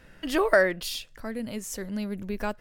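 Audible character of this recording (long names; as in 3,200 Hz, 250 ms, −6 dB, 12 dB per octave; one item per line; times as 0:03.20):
background noise floor −53 dBFS
spectral slope −4.0 dB per octave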